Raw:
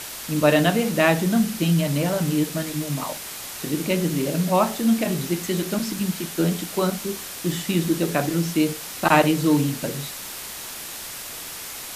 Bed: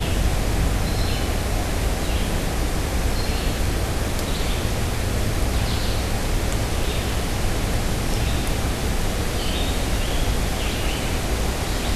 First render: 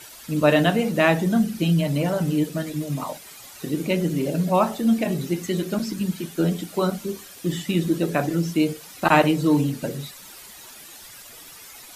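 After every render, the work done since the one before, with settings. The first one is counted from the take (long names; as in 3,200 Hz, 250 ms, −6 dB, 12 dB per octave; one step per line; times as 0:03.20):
broadband denoise 12 dB, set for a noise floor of −35 dBFS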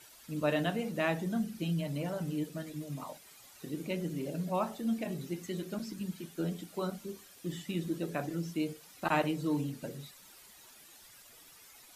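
level −13 dB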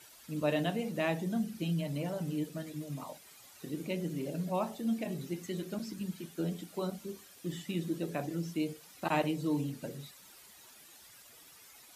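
dynamic equaliser 1,400 Hz, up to −6 dB, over −51 dBFS, Q 2.1
high-pass filter 45 Hz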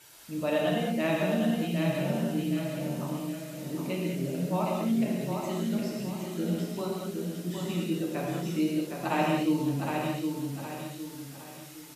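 repeating echo 762 ms, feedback 38%, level −5 dB
reverb whose tail is shaped and stops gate 240 ms flat, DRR −2.5 dB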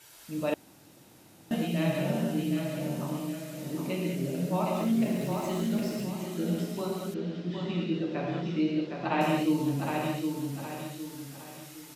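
0:00.54–0:01.51: fill with room tone
0:04.76–0:06.05: converter with a step at zero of −43.5 dBFS
0:07.14–0:09.21: low-pass filter 4,400 Hz 24 dB per octave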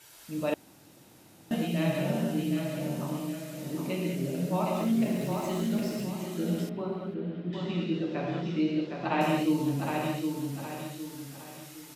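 0:06.69–0:07.53: high-frequency loss of the air 420 metres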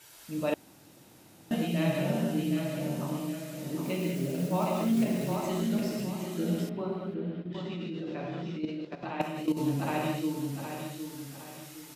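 0:03.83–0:05.38: one scale factor per block 5 bits
0:07.42–0:09.57: output level in coarse steps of 12 dB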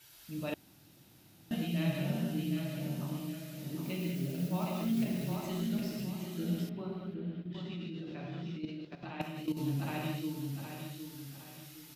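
octave-band graphic EQ 250/500/1,000/2,000/8,000 Hz −4/−9/−7/−4/−8 dB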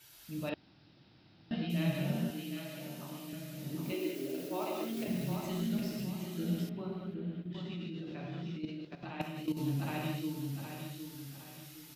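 0:00.49–0:01.70: Chebyshev low-pass filter 5,200 Hz, order 6
0:02.30–0:03.33: high-pass filter 470 Hz 6 dB per octave
0:03.92–0:05.08: low shelf with overshoot 240 Hz −11 dB, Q 3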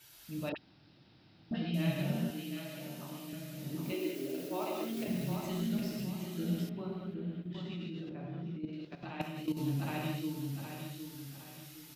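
0:00.52–0:02.03: all-pass dispersion highs, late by 43 ms, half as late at 1,400 Hz
0:08.09–0:08.73: low-pass filter 1,000 Hz 6 dB per octave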